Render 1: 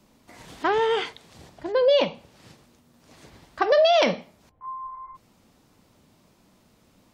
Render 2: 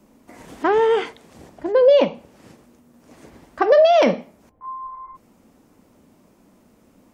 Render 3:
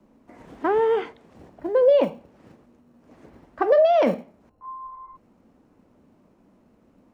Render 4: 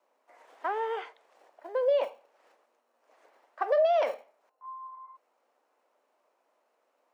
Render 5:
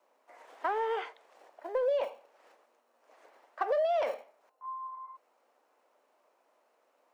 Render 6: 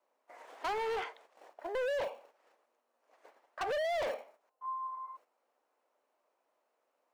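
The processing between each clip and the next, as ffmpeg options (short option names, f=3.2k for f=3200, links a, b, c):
-af "equalizer=f=125:t=o:w=1:g=-4,equalizer=f=250:t=o:w=1:g=6,equalizer=f=500:t=o:w=1:g=3,equalizer=f=4k:t=o:w=1:g=-8,volume=2.5dB"
-filter_complex "[0:a]lowpass=f=1.5k:p=1,acrossover=split=150|670[a][b][c];[a]acrusher=samples=32:mix=1:aa=0.000001[d];[d][b][c]amix=inputs=3:normalize=0,volume=-3dB"
-af "highpass=f=560:w=0.5412,highpass=f=560:w=1.3066,volume=-5.5dB"
-filter_complex "[0:a]asplit=2[a][b];[b]asoftclip=type=hard:threshold=-29dB,volume=-9.5dB[c];[a][c]amix=inputs=2:normalize=0,acompressor=threshold=-28dB:ratio=3"
-af "agate=range=-10dB:threshold=-59dB:ratio=16:detection=peak,asoftclip=type=hard:threshold=-33.5dB,volume=1.5dB"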